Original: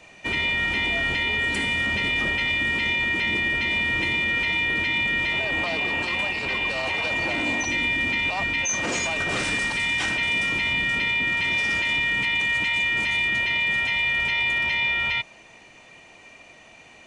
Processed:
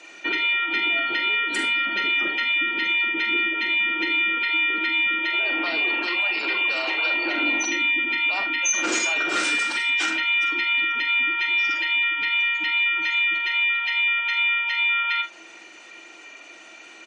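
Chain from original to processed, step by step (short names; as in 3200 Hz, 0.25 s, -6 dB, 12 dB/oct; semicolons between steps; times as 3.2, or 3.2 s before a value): weighting filter A; compressor 2:1, threshold -26 dBFS, peak gain reduction 4 dB; HPF 62 Hz 6 dB/oct; high shelf 3800 Hz +8.5 dB; spectral gate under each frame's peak -30 dB strong; small resonant body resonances 330/1400 Hz, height 16 dB, ringing for 55 ms; on a send: early reflections 43 ms -8.5 dB, 74 ms -16 dB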